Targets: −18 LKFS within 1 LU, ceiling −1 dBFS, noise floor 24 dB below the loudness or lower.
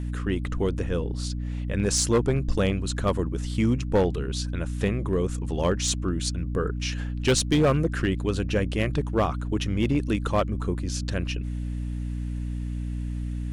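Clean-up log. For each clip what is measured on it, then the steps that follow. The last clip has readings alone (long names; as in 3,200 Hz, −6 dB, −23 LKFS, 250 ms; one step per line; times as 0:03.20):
share of clipped samples 0.8%; peaks flattened at −15.0 dBFS; mains hum 60 Hz; hum harmonics up to 300 Hz; level of the hum −28 dBFS; integrated loudness −26.5 LKFS; sample peak −15.0 dBFS; target loudness −18.0 LKFS
→ clipped peaks rebuilt −15 dBFS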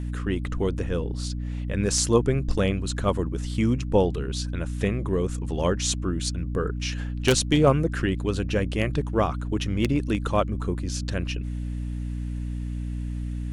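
share of clipped samples 0.0%; mains hum 60 Hz; hum harmonics up to 300 Hz; level of the hum −27 dBFS
→ hum removal 60 Hz, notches 5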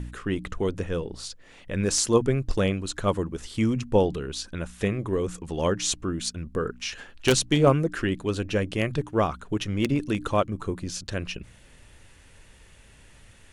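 mains hum none found; integrated loudness −26.5 LKFS; sample peak −5.5 dBFS; target loudness −18.0 LKFS
→ level +8.5 dB
brickwall limiter −1 dBFS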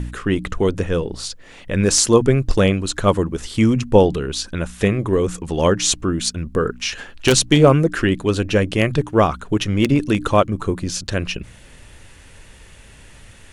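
integrated loudness −18.5 LKFS; sample peak −1.0 dBFS; background noise floor −45 dBFS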